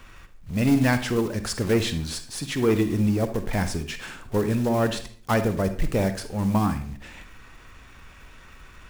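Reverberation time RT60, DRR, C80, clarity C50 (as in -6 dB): 0.50 s, 9.5 dB, 15.5 dB, 11.0 dB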